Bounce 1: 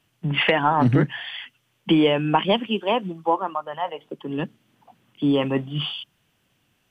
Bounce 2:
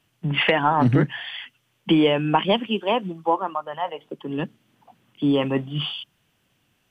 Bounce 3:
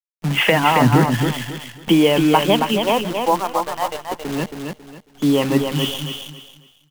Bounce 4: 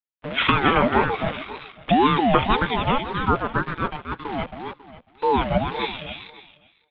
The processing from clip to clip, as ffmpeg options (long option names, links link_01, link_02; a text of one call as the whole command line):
ffmpeg -i in.wav -af anull out.wav
ffmpeg -i in.wav -filter_complex "[0:a]acrusher=bits=6:dc=4:mix=0:aa=0.000001,asplit=2[link_01][link_02];[link_02]aecho=0:1:273|546|819|1092:0.531|0.149|0.0416|0.0117[link_03];[link_01][link_03]amix=inputs=2:normalize=0,volume=3.5dB" out.wav
ffmpeg -i in.wav -af "highpass=frequency=230:width_type=q:width=0.5412,highpass=frequency=230:width_type=q:width=1.307,lowpass=frequency=3100:width_type=q:width=0.5176,lowpass=frequency=3100:width_type=q:width=0.7071,lowpass=frequency=3100:width_type=q:width=1.932,afreqshift=-73,aeval=exprs='val(0)*sin(2*PI*530*n/s+530*0.3/1.9*sin(2*PI*1.9*n/s))':channel_layout=same" out.wav